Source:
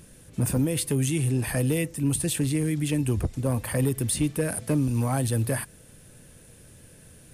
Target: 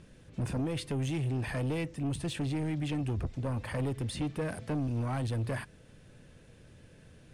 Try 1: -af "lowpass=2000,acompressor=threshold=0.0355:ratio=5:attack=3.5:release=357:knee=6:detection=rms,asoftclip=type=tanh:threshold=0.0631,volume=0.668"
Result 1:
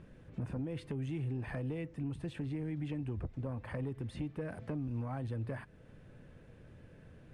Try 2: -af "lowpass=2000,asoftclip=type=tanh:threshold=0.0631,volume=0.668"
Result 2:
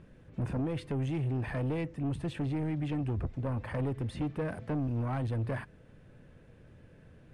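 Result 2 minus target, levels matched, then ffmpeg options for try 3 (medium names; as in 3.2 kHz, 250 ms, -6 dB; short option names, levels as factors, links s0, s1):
4 kHz band -8.0 dB
-af "lowpass=4300,asoftclip=type=tanh:threshold=0.0631,volume=0.668"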